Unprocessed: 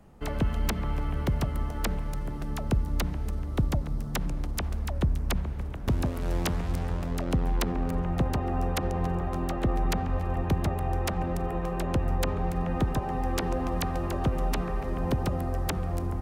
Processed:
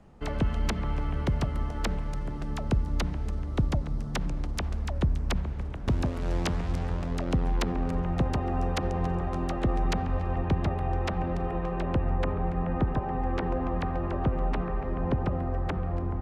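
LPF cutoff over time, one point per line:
9.87 s 7000 Hz
10.52 s 4000 Hz
11.54 s 4000 Hz
12.3 s 2200 Hz

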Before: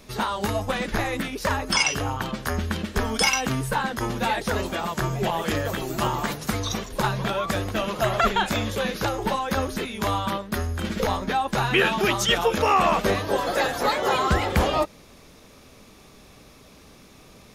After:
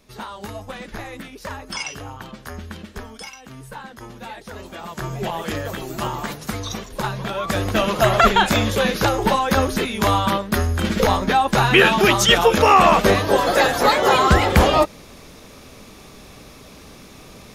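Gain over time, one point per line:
2.91 s -7.5 dB
3.37 s -18.5 dB
3.64 s -11 dB
4.52 s -11 dB
5.15 s -1 dB
7.3 s -1 dB
7.72 s +7 dB

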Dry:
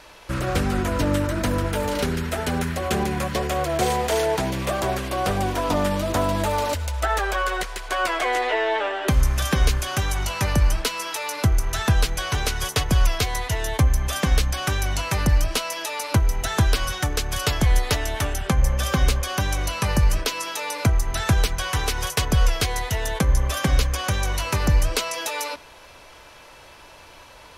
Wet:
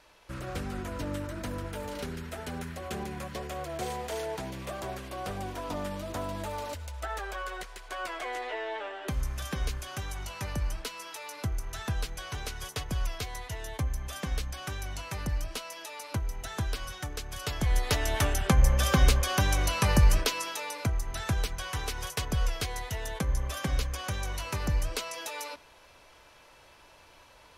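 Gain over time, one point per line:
17.37 s -13 dB
18.14 s -2 dB
20.16 s -2 dB
20.85 s -10 dB

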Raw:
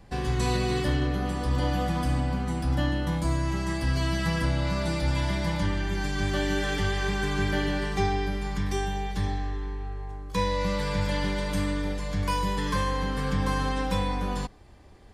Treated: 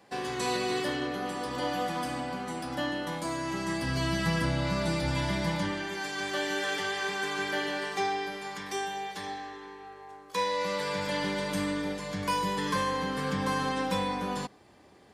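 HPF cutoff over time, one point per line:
3.32 s 320 Hz
4.06 s 110 Hz
5.42 s 110 Hz
6.01 s 430 Hz
10.46 s 430 Hz
11.41 s 180 Hz

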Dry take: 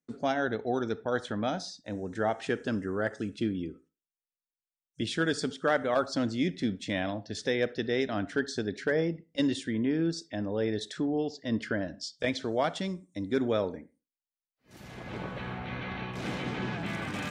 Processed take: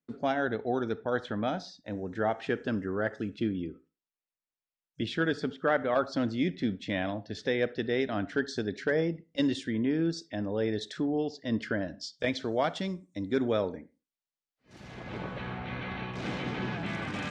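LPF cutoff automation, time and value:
5.07 s 3900 Hz
5.58 s 2500 Hz
6.07 s 4000 Hz
8.05 s 4000 Hz
8.58 s 6300 Hz

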